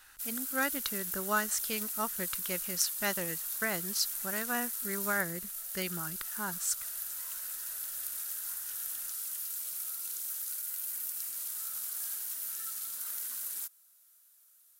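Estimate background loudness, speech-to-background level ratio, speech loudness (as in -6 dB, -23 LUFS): -35.0 LUFS, -0.5 dB, -35.5 LUFS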